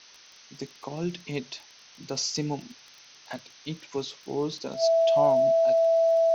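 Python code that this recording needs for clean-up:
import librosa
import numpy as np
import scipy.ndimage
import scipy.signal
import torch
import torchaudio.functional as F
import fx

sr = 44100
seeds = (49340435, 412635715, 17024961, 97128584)

y = fx.fix_declick_ar(x, sr, threshold=6.5)
y = fx.notch(y, sr, hz=660.0, q=30.0)
y = fx.noise_reduce(y, sr, print_start_s=0.0, print_end_s=0.5, reduce_db=18.0)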